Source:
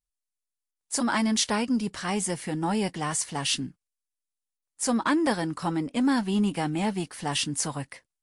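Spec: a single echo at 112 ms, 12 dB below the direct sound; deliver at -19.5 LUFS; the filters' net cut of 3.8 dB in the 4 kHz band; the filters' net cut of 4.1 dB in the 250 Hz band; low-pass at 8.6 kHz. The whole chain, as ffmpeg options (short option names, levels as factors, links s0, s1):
-af "lowpass=8600,equalizer=f=250:t=o:g=-5,equalizer=f=4000:t=o:g=-5,aecho=1:1:112:0.251,volume=3.35"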